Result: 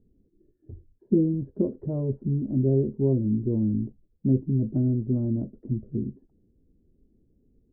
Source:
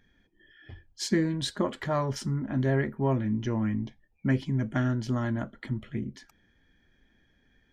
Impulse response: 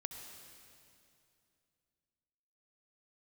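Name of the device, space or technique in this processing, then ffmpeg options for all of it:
under water: -af "lowpass=f=430:w=0.5412,lowpass=f=430:w=1.3066,equalizer=f=430:t=o:w=0.53:g=4.5,volume=1.5"

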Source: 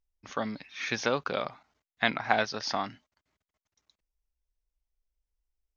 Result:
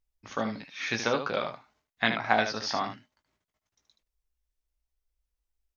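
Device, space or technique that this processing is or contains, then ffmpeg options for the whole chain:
slapback doubling: -filter_complex "[0:a]asplit=3[s0][s1][s2];[s1]adelay=18,volume=0.447[s3];[s2]adelay=76,volume=0.398[s4];[s0][s3][s4]amix=inputs=3:normalize=0"

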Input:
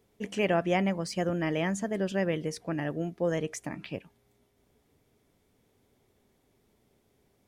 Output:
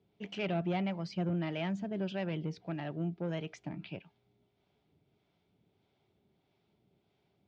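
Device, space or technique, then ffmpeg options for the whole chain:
guitar amplifier with harmonic tremolo: -filter_complex "[0:a]acrossover=split=530[s0][s1];[s0]aeval=exprs='val(0)*(1-0.5/2+0.5/2*cos(2*PI*1.6*n/s))':c=same[s2];[s1]aeval=exprs='val(0)*(1-0.5/2-0.5/2*cos(2*PI*1.6*n/s))':c=same[s3];[s2][s3]amix=inputs=2:normalize=0,asoftclip=type=tanh:threshold=0.0562,highpass=96,equalizer=f=170:t=q:w=4:g=4,equalizer=f=250:t=q:w=4:g=-7,equalizer=f=490:t=q:w=4:g=-9,equalizer=f=1100:t=q:w=4:g=-6,equalizer=f=1800:t=q:w=4:g=-9,lowpass=f=4200:w=0.5412,lowpass=f=4200:w=1.3066"

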